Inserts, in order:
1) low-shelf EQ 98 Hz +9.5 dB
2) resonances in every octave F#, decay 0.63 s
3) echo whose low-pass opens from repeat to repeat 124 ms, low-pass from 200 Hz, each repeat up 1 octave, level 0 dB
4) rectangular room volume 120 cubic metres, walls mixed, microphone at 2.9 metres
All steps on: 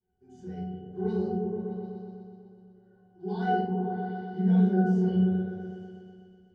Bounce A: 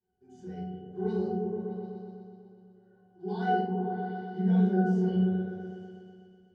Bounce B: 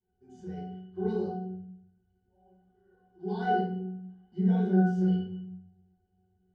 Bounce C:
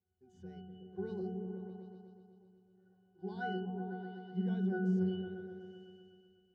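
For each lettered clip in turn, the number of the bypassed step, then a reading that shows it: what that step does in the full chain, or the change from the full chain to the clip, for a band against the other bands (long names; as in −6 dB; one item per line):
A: 1, 125 Hz band −2.0 dB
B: 3, change in integrated loudness −2.0 LU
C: 4, echo-to-direct ratio 11.5 dB to −6.0 dB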